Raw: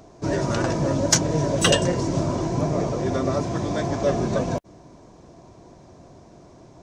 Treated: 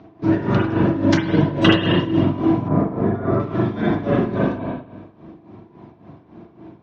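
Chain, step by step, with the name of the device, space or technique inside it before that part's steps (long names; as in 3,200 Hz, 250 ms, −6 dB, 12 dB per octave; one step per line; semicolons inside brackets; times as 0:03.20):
reverb reduction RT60 0.79 s
combo amplifier with spring reverb and tremolo (spring reverb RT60 1.2 s, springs 40/49 ms, chirp 75 ms, DRR −5.5 dB; amplitude tremolo 3.6 Hz, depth 72%; loudspeaker in its box 80–3,600 Hz, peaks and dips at 190 Hz +5 dB, 310 Hz +7 dB, 550 Hz −8 dB)
0:02.68–0:03.40: flat-topped bell 5,300 Hz −12 dB 2.7 octaves
level +1.5 dB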